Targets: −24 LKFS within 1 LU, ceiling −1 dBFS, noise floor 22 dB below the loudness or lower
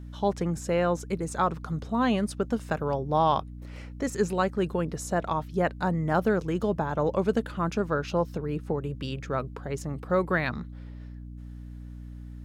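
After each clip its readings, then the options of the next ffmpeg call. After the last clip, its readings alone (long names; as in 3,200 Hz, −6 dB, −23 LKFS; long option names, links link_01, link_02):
mains hum 60 Hz; hum harmonics up to 300 Hz; level of the hum −38 dBFS; integrated loudness −28.5 LKFS; sample peak −12.0 dBFS; target loudness −24.0 LKFS
→ -af "bandreject=frequency=60:width_type=h:width=4,bandreject=frequency=120:width_type=h:width=4,bandreject=frequency=180:width_type=h:width=4,bandreject=frequency=240:width_type=h:width=4,bandreject=frequency=300:width_type=h:width=4"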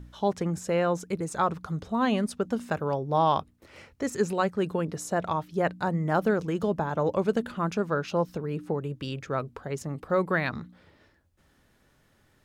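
mains hum none found; integrated loudness −28.5 LKFS; sample peak −12.0 dBFS; target loudness −24.0 LKFS
→ -af "volume=4.5dB"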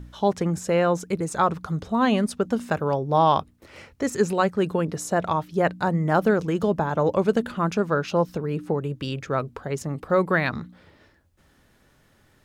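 integrated loudness −24.0 LKFS; sample peak −7.5 dBFS; background noise floor −61 dBFS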